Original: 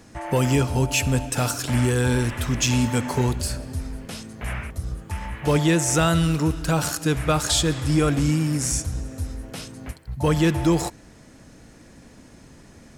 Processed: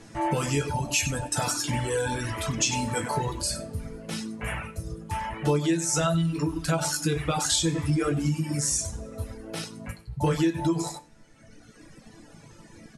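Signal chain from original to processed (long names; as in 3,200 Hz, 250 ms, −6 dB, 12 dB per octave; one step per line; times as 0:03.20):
on a send: single-tap delay 96 ms −8.5 dB
on the sum: dynamic equaliser 6,400 Hz, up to +4 dB, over −36 dBFS, Q 1
in parallel at +1.5 dB: brickwall limiter −19 dBFS, peak gain reduction 11.5 dB
on the sum: Butterworth low-pass 12,000 Hz 72 dB per octave
resonators tuned to a chord A2 sus4, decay 0.3 s
downward compressor 12 to 1, threshold −27 dBFS, peak gain reduction 8.5 dB
reverb reduction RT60 1.8 s
level +8.5 dB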